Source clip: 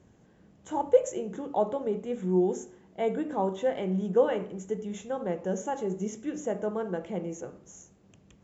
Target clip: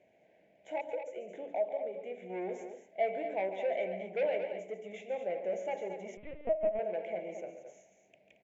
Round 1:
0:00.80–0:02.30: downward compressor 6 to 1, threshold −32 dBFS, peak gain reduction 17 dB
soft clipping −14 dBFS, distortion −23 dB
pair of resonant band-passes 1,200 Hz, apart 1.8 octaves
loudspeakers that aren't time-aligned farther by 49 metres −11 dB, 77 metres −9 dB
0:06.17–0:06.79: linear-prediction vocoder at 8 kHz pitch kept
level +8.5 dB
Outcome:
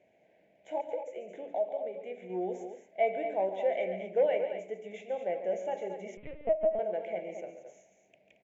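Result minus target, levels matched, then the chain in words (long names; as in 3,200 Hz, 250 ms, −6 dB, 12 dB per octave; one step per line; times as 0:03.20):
soft clipping: distortion −14 dB
0:00.80–0:02.30: downward compressor 6 to 1, threshold −32 dBFS, peak gain reduction 17 dB
soft clipping −26 dBFS, distortion −9 dB
pair of resonant band-passes 1,200 Hz, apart 1.8 octaves
loudspeakers that aren't time-aligned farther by 49 metres −11 dB, 77 metres −9 dB
0:06.17–0:06.79: linear-prediction vocoder at 8 kHz pitch kept
level +8.5 dB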